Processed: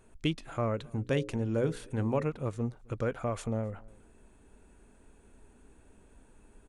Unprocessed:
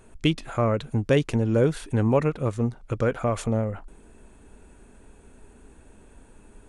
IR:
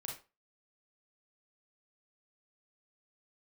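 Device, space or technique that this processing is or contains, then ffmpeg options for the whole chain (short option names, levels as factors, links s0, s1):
ducked delay: -filter_complex "[0:a]asettb=1/sr,asplit=3[s0][s1][s2];[s0]atrim=end=0.764[s3];[s1]atrim=start=0.76:end=2.24,asetpts=PTS-STARTPTS,afade=t=in:d=0.004:c=qsin,afade=t=out:st=1.476:d=0.004:c=qsin,bandreject=f=60:t=h:w=6,bandreject=f=120:t=h:w=6,bandreject=f=180:t=h:w=6,bandreject=f=240:t=h:w=6,bandreject=f=300:t=h:w=6,bandreject=f=360:t=h:w=6,bandreject=f=420:t=h:w=6,bandreject=f=480:t=h:w=6,bandreject=f=540:t=h:w=6[s4];[s2]atrim=start=2.236[s5];[s3][s4]acrossfade=d=0.004:c1=hsin:c2=qsin[s6];[s6][s5]acrossfade=d=0.004:c1=qsin:c2=hsin,asplit=3[s7][s8][s9];[s8]adelay=263,volume=0.398[s10];[s9]apad=whole_len=306393[s11];[s10][s11]sidechaincompress=threshold=0.00708:ratio=4:attack=5.4:release=904[s12];[s7][s12]amix=inputs=2:normalize=0,volume=0.398"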